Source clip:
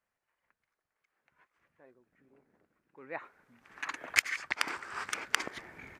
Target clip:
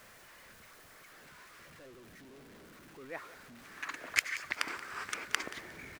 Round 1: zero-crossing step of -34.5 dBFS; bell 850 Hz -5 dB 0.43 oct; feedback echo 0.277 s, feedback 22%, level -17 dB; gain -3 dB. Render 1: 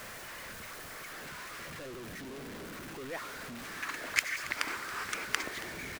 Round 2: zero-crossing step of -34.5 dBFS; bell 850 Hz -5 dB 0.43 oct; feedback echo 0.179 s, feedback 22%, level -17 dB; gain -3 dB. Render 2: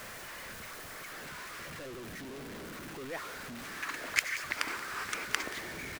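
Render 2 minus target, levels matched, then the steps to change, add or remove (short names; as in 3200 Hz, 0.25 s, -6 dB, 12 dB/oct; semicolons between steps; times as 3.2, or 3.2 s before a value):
zero-crossing step: distortion +10 dB
change: zero-crossing step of -46 dBFS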